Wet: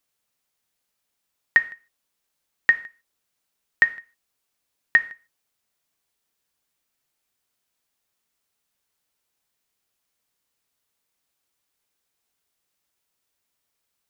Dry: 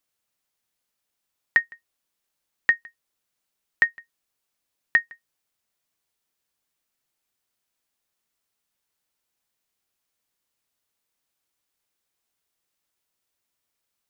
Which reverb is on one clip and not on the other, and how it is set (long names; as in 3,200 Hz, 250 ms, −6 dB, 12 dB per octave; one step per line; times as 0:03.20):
reverb whose tail is shaped and stops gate 170 ms falling, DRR 11.5 dB
level +2 dB